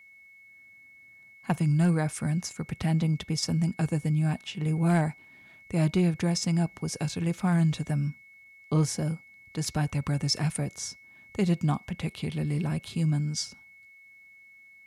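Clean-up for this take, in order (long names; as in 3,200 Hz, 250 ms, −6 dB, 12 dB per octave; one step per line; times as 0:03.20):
clipped peaks rebuilt −16.5 dBFS
notch filter 2,200 Hz, Q 30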